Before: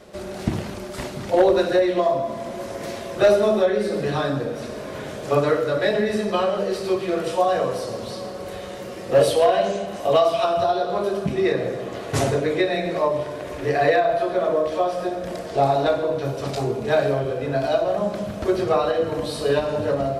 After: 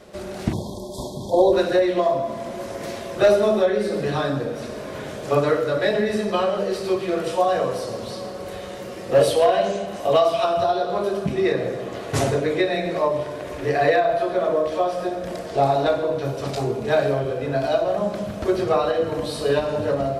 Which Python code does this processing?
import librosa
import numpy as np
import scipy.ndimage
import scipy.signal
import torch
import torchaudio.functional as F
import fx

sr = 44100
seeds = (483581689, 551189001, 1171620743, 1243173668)

y = fx.spec_erase(x, sr, start_s=0.53, length_s=1.0, low_hz=1100.0, high_hz=3200.0)